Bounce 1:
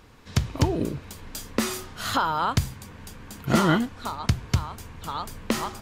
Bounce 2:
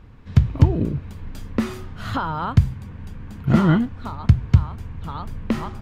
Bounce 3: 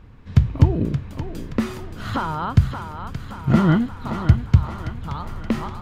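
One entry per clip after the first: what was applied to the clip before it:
tone controls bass +12 dB, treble -13 dB; gain -2 dB
thinning echo 0.575 s, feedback 58%, high-pass 310 Hz, level -7.5 dB

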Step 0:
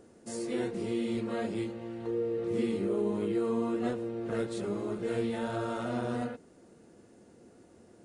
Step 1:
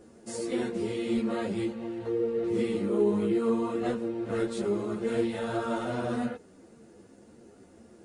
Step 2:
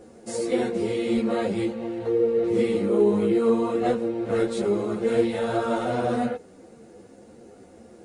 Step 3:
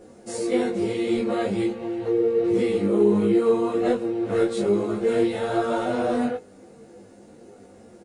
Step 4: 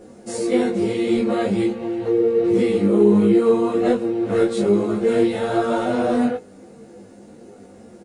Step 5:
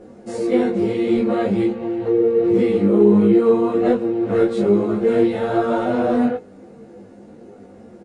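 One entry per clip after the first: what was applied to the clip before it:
ensemble effect; gain +6 dB
small resonant body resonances 510/740/2200/3900 Hz, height 7 dB, ringing for 35 ms; gain +4 dB
doubler 20 ms -3 dB; gain -1 dB
bell 210 Hz +3.5 dB 0.82 oct; gain +3 dB
LPF 2200 Hz 6 dB/oct; gain +1.5 dB

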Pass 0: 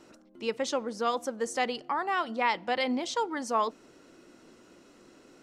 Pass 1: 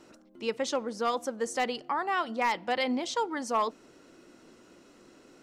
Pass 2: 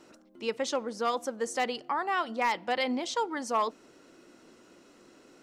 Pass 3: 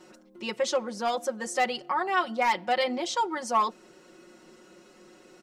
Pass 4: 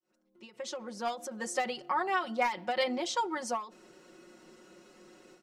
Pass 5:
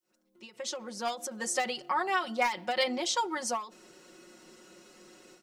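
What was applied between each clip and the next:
hard clip -19 dBFS, distortion -22 dB
low shelf 140 Hz -5.5 dB
comb 5.5 ms, depth 98%
opening faded in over 1.41 s; ending taper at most 150 dB/s; gain -2.5 dB
high shelf 2800 Hz +7.5 dB

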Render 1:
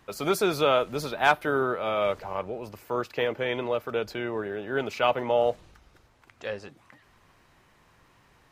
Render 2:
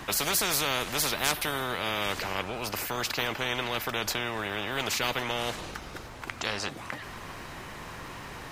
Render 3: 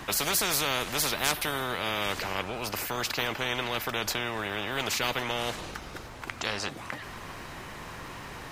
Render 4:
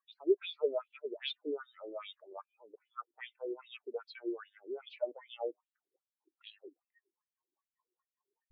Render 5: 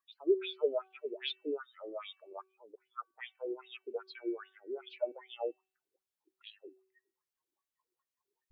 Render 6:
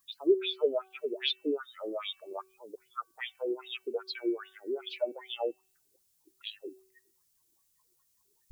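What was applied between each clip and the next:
spectral compressor 4:1
nothing audible
LFO band-pass sine 2.5 Hz 330–3800 Hz; spectral expander 4:1
de-hum 379.4 Hz, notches 8; gain +1 dB
tone controls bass +14 dB, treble +15 dB; in parallel at +1 dB: compressor, threshold -41 dBFS, peak gain reduction 19.5 dB

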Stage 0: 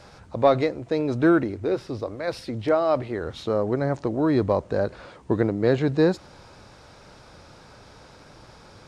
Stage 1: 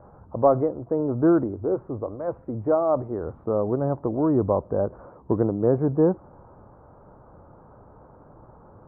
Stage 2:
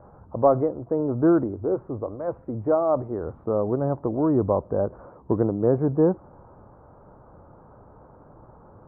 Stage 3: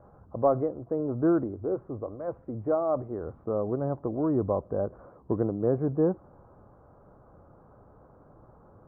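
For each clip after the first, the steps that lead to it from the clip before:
steep low-pass 1200 Hz 36 dB/oct
nothing audible
notch 910 Hz, Q 11; gain -5 dB

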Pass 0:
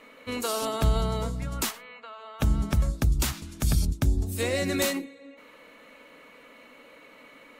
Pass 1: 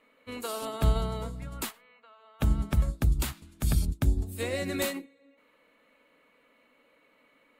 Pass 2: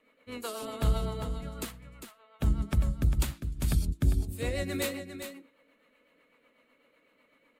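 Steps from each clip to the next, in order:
bell 5800 Hz -7 dB 0.53 oct; upward expander 1.5:1, over -44 dBFS
in parallel at -9.5 dB: one-sided clip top -24.5 dBFS; on the sum: rotary speaker horn 8 Hz; echo 0.401 s -9 dB; gain -2.5 dB

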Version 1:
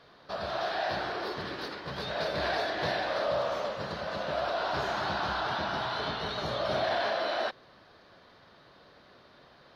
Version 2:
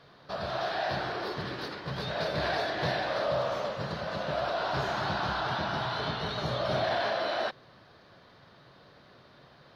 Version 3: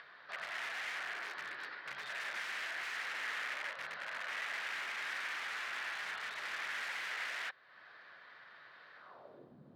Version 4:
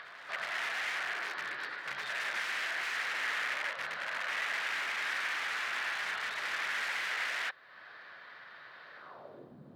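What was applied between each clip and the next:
bell 130 Hz +7.5 dB 0.91 oct
wrapped overs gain 28 dB; upward compressor, threshold -39 dBFS; band-pass sweep 1800 Hz -> 220 Hz, 8.95–9.56
reverse echo 0.367 s -16.5 dB; gain +5.5 dB

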